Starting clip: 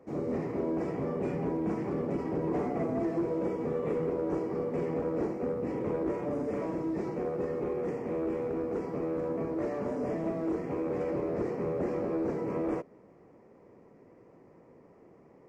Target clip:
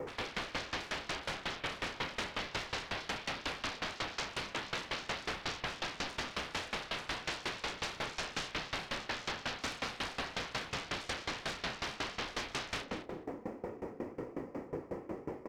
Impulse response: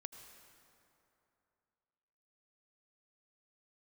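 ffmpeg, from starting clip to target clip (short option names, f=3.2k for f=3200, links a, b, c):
-filter_complex "[0:a]asettb=1/sr,asplit=3[a][b][c];[a]atrim=end=1.114[d];[b]atrim=start=1.11:end=3.53,asetpts=PTS-STARTPTS,afade=t=in:d=0.004:c=qsin,afade=t=out:st=2.416:d=0.004:c=qsin,highpass=160[e];[c]atrim=start=3.526[f];[d][e]acrossfade=d=0.004:c1=hsin:c2=qsin[g];[g][f]acrossfade=d=0.004:c1=qsin:c2=hsin,alimiter=level_in=7.5dB:limit=-24dB:level=0:latency=1:release=13,volume=-7.5dB,flanger=delay=2.2:depth=1.7:regen=-19:speed=1.9:shape=sinusoidal,aeval=exprs='0.0211*sin(PI/2*7.94*val(0)/0.0211)':c=same,asplit=2[h][i];[i]adelay=32,volume=-6.5dB[j];[h][j]amix=inputs=2:normalize=0,asplit=2[k][l];[l]adelay=208,lowpass=f=3.4k:p=1,volume=-4dB,asplit=2[m][n];[n]adelay=208,lowpass=f=3.4k:p=1,volume=0.26,asplit=2[o][p];[p]adelay=208,lowpass=f=3.4k:p=1,volume=0.26,asplit=2[q][r];[r]adelay=208,lowpass=f=3.4k:p=1,volume=0.26[s];[k][m][o][q][s]amix=inputs=5:normalize=0,aeval=exprs='val(0)*pow(10,-20*if(lt(mod(5.5*n/s,1),2*abs(5.5)/1000),1-mod(5.5*n/s,1)/(2*abs(5.5)/1000),(mod(5.5*n/s,1)-2*abs(5.5)/1000)/(1-2*abs(5.5)/1000))/20)':c=same,volume=1dB"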